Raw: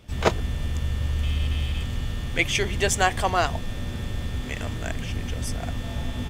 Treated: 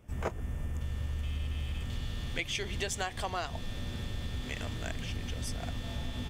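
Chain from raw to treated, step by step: peaking EQ 4 kHz -15 dB 0.95 oct, from 0.81 s -3 dB, from 1.90 s +5 dB; compression 6:1, threshold -24 dBFS, peak gain reduction 10 dB; trim -6.5 dB

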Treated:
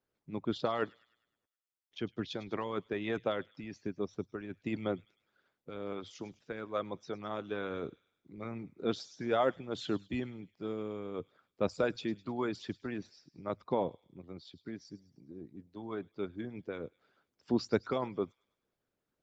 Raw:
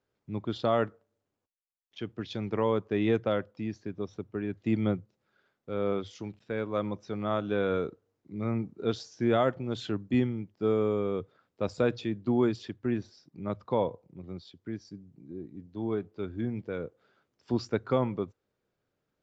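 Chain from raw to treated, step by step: feedback echo behind a high-pass 103 ms, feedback 49%, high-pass 3 kHz, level -12.5 dB; harmonic-percussive split harmonic -14 dB

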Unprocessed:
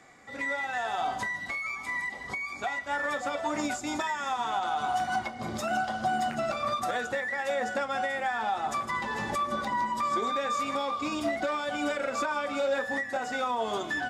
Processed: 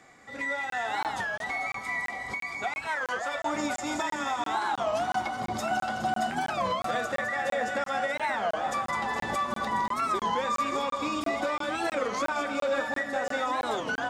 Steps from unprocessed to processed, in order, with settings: 2.83–3.43 s: high-pass 520 Hz 12 dB/octave; on a send: two-band feedback delay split 1.1 kHz, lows 556 ms, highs 208 ms, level -6.5 dB; on the sum: crackling interface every 0.34 s, samples 1024, zero, from 0.70 s; warped record 33 1/3 rpm, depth 250 cents

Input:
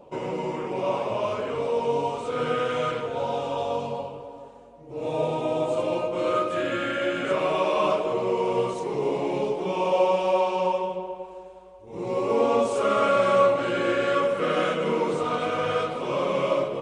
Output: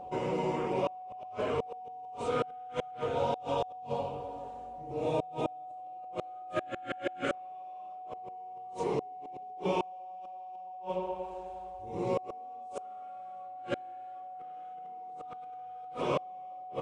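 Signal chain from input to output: peaking EQ 69 Hz +9.5 dB 0.93 oct; inverted gate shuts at -17 dBFS, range -36 dB; whistle 740 Hz -39 dBFS; trim -2.5 dB

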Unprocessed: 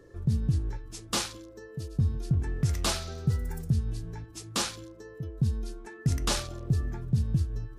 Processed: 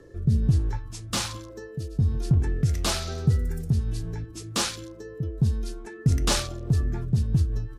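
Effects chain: resampled via 32 kHz; in parallel at -6 dB: saturation -29.5 dBFS, distortion -7 dB; on the sum: rotary cabinet horn 1.2 Hz, later 5.5 Hz, at 6.21 s; 0.72–1.50 s: fifteen-band graphic EQ 100 Hz +7 dB, 400 Hz -9 dB, 1 kHz +7 dB; trim +4 dB

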